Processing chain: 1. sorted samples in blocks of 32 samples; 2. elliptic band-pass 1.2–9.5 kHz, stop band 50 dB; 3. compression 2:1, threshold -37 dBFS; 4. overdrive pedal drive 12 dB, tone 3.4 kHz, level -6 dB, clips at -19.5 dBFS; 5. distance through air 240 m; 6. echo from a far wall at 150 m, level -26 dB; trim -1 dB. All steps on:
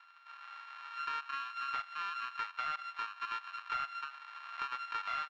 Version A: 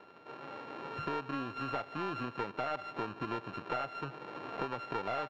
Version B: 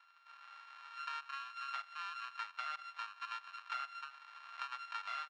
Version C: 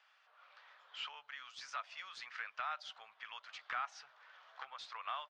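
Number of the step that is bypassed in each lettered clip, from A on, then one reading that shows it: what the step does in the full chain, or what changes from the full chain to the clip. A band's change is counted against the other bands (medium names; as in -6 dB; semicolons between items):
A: 2, 500 Hz band +25.5 dB; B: 4, crest factor change +3.5 dB; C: 1, distortion -1 dB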